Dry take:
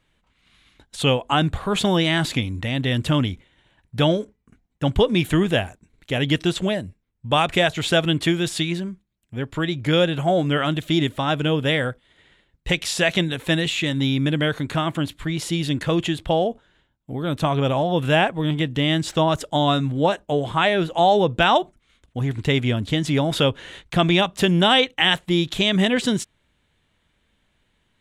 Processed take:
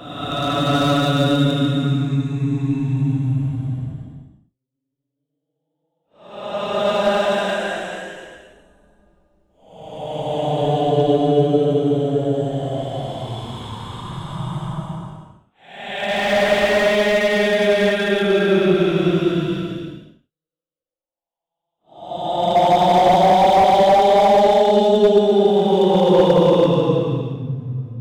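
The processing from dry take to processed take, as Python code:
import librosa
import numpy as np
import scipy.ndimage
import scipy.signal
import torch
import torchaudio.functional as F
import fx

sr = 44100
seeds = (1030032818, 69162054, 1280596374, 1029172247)

p1 = fx.backlash(x, sr, play_db=-23.0)
p2 = x + (p1 * 10.0 ** (-5.5 / 20.0))
p3 = fx.step_gate(p2, sr, bpm=162, pattern='xx.xx..xxx', floor_db=-60.0, edge_ms=4.5)
p4 = fx.paulstretch(p3, sr, seeds[0], factor=17.0, window_s=0.1, from_s=19.69)
y = fx.slew_limit(p4, sr, full_power_hz=230.0)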